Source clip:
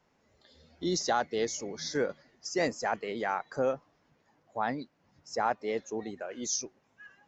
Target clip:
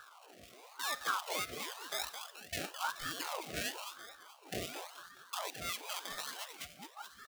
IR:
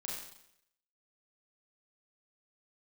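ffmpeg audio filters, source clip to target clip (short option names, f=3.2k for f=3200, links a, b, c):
-filter_complex "[0:a]afwtdn=0.0178,asetrate=72056,aresample=44100,atempo=0.612027,aresample=11025,aresample=44100,acompressor=mode=upward:threshold=-31dB:ratio=2.5,aemphasis=mode=production:type=bsi,acrusher=samples=25:mix=1:aa=0.000001:lfo=1:lforange=15:lforate=1.2,alimiter=level_in=2.5dB:limit=-24dB:level=0:latency=1:release=318,volume=-2.5dB,asplit=7[a][b][c][d][e][f][g];[b]adelay=214,afreqshift=-50,volume=-8dB[h];[c]adelay=428,afreqshift=-100,volume=-14.4dB[i];[d]adelay=642,afreqshift=-150,volume=-20.8dB[j];[e]adelay=856,afreqshift=-200,volume=-27.1dB[k];[f]adelay=1070,afreqshift=-250,volume=-33.5dB[l];[g]adelay=1284,afreqshift=-300,volume=-39.9dB[m];[a][h][i][j][k][l][m]amix=inputs=7:normalize=0,asplit=2[n][o];[1:a]atrim=start_sample=2205[p];[o][p]afir=irnorm=-1:irlink=0,volume=-12.5dB[q];[n][q]amix=inputs=2:normalize=0,afftfilt=real='re*(1-between(b*sr/4096,340,1500))':imag='im*(1-between(b*sr/4096,340,1500))':win_size=4096:overlap=0.75,aeval=exprs='val(0)*sin(2*PI*950*n/s+950*0.6/0.96*sin(2*PI*0.96*n/s))':c=same,volume=3.5dB"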